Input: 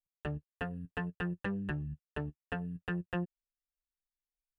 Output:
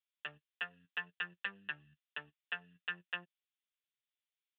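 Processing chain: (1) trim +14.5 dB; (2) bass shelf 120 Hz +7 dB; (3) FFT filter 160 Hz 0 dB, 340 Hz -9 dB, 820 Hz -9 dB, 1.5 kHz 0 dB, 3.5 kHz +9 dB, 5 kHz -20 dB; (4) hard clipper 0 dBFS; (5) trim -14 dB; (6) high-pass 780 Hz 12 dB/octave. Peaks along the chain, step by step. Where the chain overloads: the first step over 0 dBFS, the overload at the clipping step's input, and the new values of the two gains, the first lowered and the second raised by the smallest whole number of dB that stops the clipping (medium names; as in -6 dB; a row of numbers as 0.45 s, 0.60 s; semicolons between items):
-8.0 dBFS, -7.0 dBFS, -5.0 dBFS, -5.0 dBFS, -19.0 dBFS, -22.5 dBFS; nothing clips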